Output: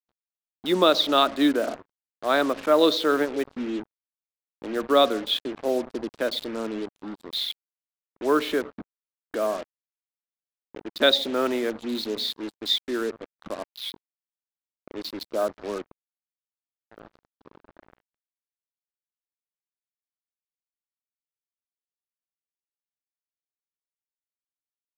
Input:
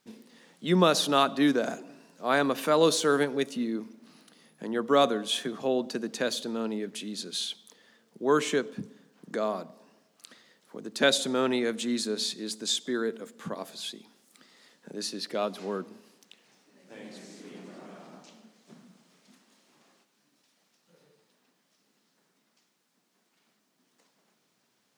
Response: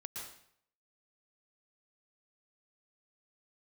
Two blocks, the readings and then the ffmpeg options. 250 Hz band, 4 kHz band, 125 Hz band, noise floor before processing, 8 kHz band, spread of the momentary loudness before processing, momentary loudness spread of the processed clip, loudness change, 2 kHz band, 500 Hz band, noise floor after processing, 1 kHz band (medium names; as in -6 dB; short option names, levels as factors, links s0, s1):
+2.0 dB, +5.0 dB, -8.0 dB, -73 dBFS, -8.0 dB, 22 LU, 17 LU, +3.0 dB, +1.5 dB, +3.0 dB, under -85 dBFS, +2.5 dB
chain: -af "afwtdn=0.0126,highpass=170,equalizer=f=170:t=q:w=4:g=-9,equalizer=f=320:t=q:w=4:g=6,equalizer=f=610:t=q:w=4:g=6,equalizer=f=1300:t=q:w=4:g=4,equalizer=f=3700:t=q:w=4:g=8,lowpass=f=4800:w=0.5412,lowpass=f=4800:w=1.3066,acrusher=bits=5:mix=0:aa=0.5"